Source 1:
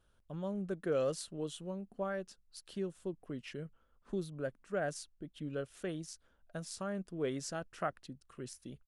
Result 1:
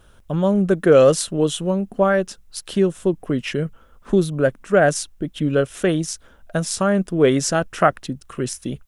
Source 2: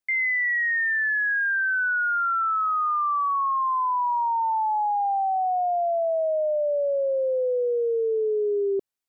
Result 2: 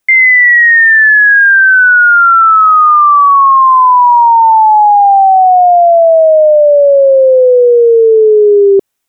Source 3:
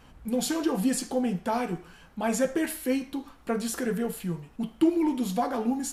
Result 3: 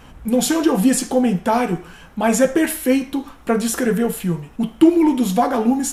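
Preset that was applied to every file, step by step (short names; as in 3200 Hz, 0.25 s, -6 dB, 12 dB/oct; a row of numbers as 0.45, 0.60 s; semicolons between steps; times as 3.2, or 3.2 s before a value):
bell 4500 Hz -5.5 dB 0.22 oct; normalise peaks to -2 dBFS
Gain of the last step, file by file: +20.5, +18.5, +10.5 dB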